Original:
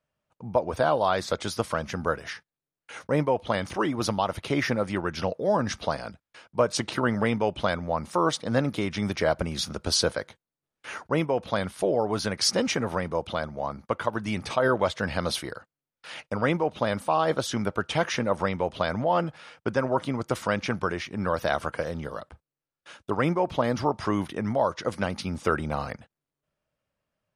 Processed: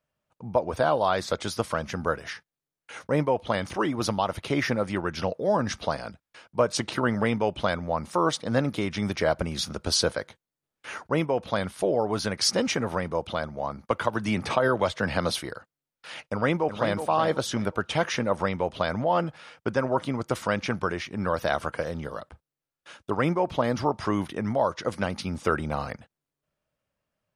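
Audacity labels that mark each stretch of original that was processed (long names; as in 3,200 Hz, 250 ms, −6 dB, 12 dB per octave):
13.900000	15.300000	multiband upward and downward compressor depth 70%
16.280000	16.910000	delay throw 370 ms, feedback 30%, level −8.5 dB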